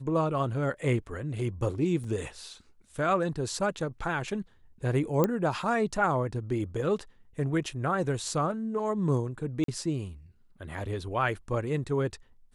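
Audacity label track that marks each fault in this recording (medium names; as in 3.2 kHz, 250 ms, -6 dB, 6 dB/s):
2.040000	2.040000	dropout 3.7 ms
5.240000	5.240000	pop -12 dBFS
9.640000	9.680000	dropout 43 ms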